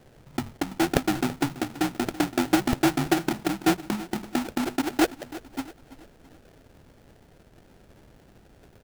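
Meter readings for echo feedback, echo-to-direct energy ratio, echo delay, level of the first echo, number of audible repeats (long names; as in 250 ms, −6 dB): 43%, −16.0 dB, 332 ms, −17.0 dB, 3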